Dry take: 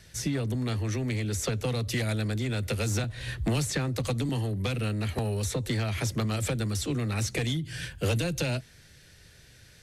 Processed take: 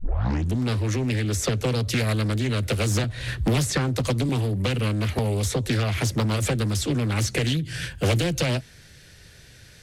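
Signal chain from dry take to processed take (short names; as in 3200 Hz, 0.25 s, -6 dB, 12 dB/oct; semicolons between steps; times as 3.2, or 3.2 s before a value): tape start at the beginning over 0.59 s; Doppler distortion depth 0.42 ms; gain +5.5 dB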